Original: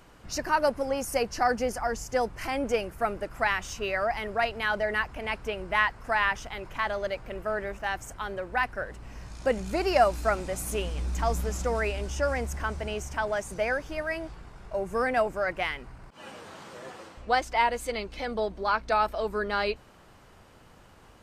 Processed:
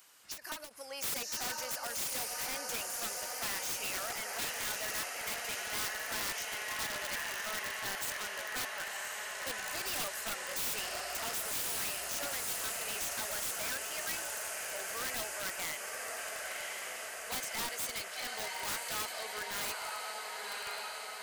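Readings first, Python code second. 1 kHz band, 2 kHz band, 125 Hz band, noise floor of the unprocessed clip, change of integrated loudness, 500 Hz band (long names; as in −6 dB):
−13.0 dB, −7.5 dB, −19.0 dB, −54 dBFS, −7.0 dB, −16.5 dB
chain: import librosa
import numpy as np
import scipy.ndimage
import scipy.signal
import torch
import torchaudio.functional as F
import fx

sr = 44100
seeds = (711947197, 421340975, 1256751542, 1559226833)

p1 = fx.dynamic_eq(x, sr, hz=240.0, q=2.7, threshold_db=-48.0, ratio=4.0, max_db=-3)
p2 = fx.rider(p1, sr, range_db=3, speed_s=0.5)
p3 = p1 + F.gain(torch.from_numpy(p2), -2.5).numpy()
p4 = np.diff(p3, prepend=0.0)
p5 = p4 + fx.echo_diffused(p4, sr, ms=1070, feedback_pct=76, wet_db=-4.5, dry=0)
p6 = (np.mod(10.0 ** (30.0 / 20.0) * p5 + 1.0, 2.0) - 1.0) / 10.0 ** (30.0 / 20.0)
y = fx.end_taper(p6, sr, db_per_s=190.0)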